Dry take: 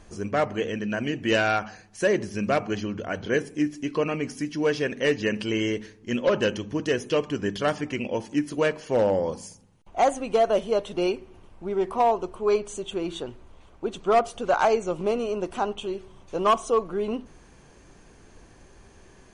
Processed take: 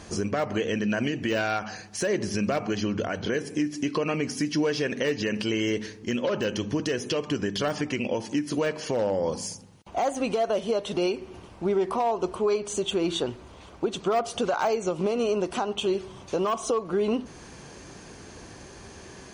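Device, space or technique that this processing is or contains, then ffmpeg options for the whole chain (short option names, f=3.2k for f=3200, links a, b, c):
broadcast voice chain: -af "highpass=73,deesser=0.85,acompressor=threshold=-25dB:ratio=5,equalizer=f=4.9k:t=o:w=0.85:g=5,alimiter=level_in=1.5dB:limit=-24dB:level=0:latency=1:release=282,volume=-1.5dB,volume=8.5dB"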